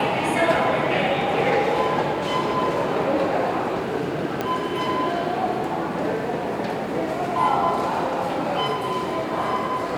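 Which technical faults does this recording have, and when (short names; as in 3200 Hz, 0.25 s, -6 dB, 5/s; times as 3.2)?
4.41 pop -11 dBFS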